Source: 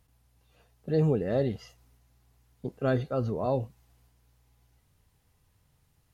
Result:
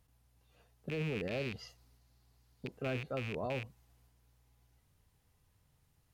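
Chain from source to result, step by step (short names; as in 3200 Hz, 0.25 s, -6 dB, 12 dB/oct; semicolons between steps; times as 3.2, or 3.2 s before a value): rattling part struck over -32 dBFS, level -20 dBFS; 1.23–2.7 bell 4500 Hz +7.5 dB 0.46 oct; limiter -25.5 dBFS, peak gain reduction 10 dB; gain -4 dB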